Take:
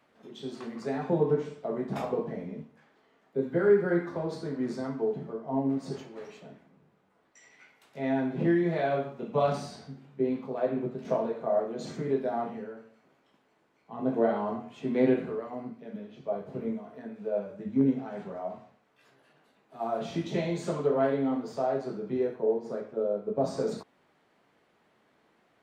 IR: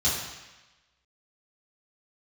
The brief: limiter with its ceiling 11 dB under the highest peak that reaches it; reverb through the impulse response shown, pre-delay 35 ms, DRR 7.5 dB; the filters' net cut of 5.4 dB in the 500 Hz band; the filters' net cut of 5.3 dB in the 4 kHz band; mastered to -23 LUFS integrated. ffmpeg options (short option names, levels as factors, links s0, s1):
-filter_complex "[0:a]equalizer=f=500:t=o:g=-7,equalizer=f=4000:t=o:g=-6.5,alimiter=level_in=1.33:limit=0.0631:level=0:latency=1,volume=0.75,asplit=2[s0][s1];[1:a]atrim=start_sample=2205,adelay=35[s2];[s1][s2]afir=irnorm=-1:irlink=0,volume=0.119[s3];[s0][s3]amix=inputs=2:normalize=0,volume=4.47"